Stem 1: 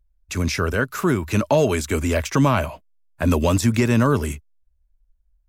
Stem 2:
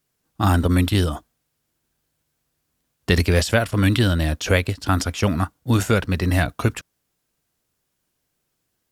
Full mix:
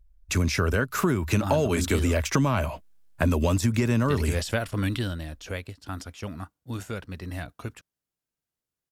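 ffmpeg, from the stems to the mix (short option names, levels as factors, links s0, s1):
-filter_complex "[0:a]lowshelf=f=150:g=4.5,volume=1.26[s0];[1:a]adelay=1000,volume=0.447,afade=t=out:st=4.71:d=0.56:silence=0.375837[s1];[s0][s1]amix=inputs=2:normalize=0,acompressor=threshold=0.1:ratio=5"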